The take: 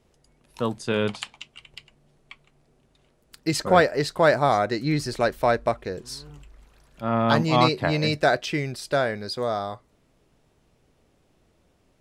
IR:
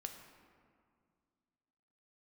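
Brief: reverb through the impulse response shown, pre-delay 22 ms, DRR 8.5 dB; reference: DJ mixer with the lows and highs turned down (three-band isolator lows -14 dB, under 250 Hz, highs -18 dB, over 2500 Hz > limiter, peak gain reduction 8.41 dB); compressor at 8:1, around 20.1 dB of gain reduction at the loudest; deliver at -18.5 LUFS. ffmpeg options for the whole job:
-filter_complex "[0:a]acompressor=threshold=-34dB:ratio=8,asplit=2[a][b];[1:a]atrim=start_sample=2205,adelay=22[c];[b][c]afir=irnorm=-1:irlink=0,volume=-5.5dB[d];[a][d]amix=inputs=2:normalize=0,acrossover=split=250 2500:gain=0.2 1 0.126[e][f][g];[e][f][g]amix=inputs=3:normalize=0,volume=24.5dB,alimiter=limit=-6dB:level=0:latency=1"

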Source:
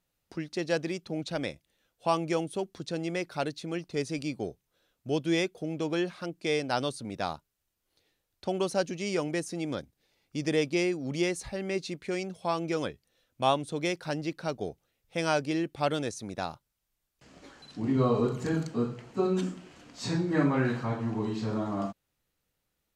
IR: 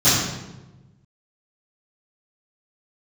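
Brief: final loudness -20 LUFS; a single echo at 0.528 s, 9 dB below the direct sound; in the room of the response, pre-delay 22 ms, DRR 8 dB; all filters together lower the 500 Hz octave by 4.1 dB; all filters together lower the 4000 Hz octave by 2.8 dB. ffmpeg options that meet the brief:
-filter_complex "[0:a]equalizer=f=500:t=o:g=-5.5,equalizer=f=4k:t=o:g=-3.5,aecho=1:1:528:0.355,asplit=2[a][b];[1:a]atrim=start_sample=2205,adelay=22[c];[b][c]afir=irnorm=-1:irlink=0,volume=-29.5dB[d];[a][d]amix=inputs=2:normalize=0,volume=11dB"

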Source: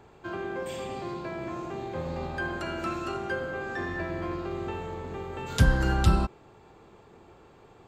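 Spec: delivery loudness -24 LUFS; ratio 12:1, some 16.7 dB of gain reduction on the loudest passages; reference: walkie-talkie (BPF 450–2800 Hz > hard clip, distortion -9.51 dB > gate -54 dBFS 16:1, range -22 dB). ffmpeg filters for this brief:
-af "acompressor=threshold=-32dB:ratio=12,highpass=450,lowpass=2.8k,asoftclip=type=hard:threshold=-40dB,agate=range=-22dB:threshold=-54dB:ratio=16,volume=19dB"

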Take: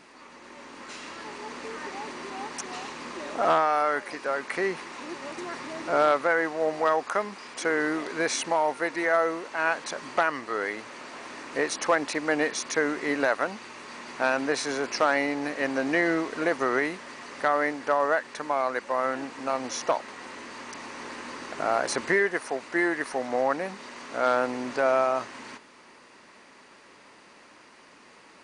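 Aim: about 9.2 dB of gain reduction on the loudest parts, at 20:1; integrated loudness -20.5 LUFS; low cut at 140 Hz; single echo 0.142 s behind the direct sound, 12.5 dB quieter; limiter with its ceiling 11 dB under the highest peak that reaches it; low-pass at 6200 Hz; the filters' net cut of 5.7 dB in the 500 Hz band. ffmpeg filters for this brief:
-af "highpass=140,lowpass=6.2k,equalizer=f=500:t=o:g=-7.5,acompressor=threshold=-29dB:ratio=20,alimiter=level_in=3dB:limit=-24dB:level=0:latency=1,volume=-3dB,aecho=1:1:142:0.237,volume=17.5dB"

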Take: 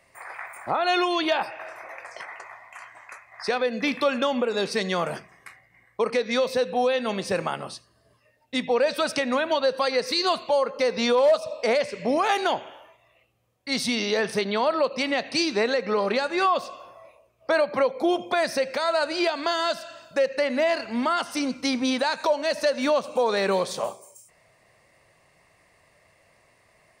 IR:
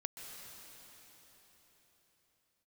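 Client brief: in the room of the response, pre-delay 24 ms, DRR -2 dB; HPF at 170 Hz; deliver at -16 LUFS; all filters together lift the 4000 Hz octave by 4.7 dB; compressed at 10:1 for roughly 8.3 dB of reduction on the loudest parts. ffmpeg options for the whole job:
-filter_complex "[0:a]highpass=170,equalizer=f=4k:t=o:g=5.5,acompressor=threshold=-25dB:ratio=10,asplit=2[a][b];[1:a]atrim=start_sample=2205,adelay=24[c];[b][c]afir=irnorm=-1:irlink=0,volume=3dB[d];[a][d]amix=inputs=2:normalize=0,volume=10.5dB"

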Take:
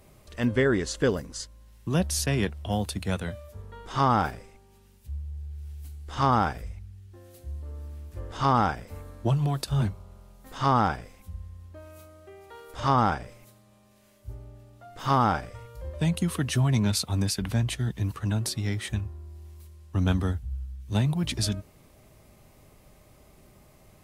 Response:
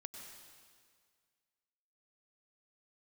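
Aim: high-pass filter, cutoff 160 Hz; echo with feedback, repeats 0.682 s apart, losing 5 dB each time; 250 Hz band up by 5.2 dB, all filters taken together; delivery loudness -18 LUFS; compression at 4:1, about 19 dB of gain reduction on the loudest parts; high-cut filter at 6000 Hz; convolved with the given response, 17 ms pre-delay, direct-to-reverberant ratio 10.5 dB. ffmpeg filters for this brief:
-filter_complex "[0:a]highpass=160,lowpass=6k,equalizer=f=250:t=o:g=8,acompressor=threshold=-39dB:ratio=4,aecho=1:1:682|1364|2046|2728|3410|4092|4774:0.562|0.315|0.176|0.0988|0.0553|0.031|0.0173,asplit=2[a][b];[1:a]atrim=start_sample=2205,adelay=17[c];[b][c]afir=irnorm=-1:irlink=0,volume=-6.5dB[d];[a][d]amix=inputs=2:normalize=0,volume=23.5dB"

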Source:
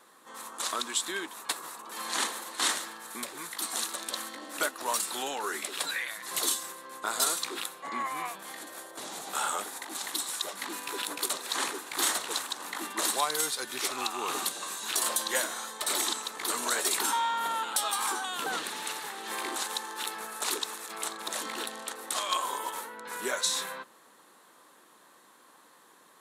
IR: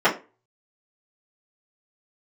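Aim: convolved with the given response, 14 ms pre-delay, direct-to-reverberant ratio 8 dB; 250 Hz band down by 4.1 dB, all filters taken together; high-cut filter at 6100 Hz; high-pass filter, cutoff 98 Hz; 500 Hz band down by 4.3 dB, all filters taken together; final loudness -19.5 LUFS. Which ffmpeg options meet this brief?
-filter_complex "[0:a]highpass=98,lowpass=6.1k,equalizer=f=250:t=o:g=-3.5,equalizer=f=500:t=o:g=-4.5,asplit=2[a][b];[1:a]atrim=start_sample=2205,adelay=14[c];[b][c]afir=irnorm=-1:irlink=0,volume=-28.5dB[d];[a][d]amix=inputs=2:normalize=0,volume=14dB"

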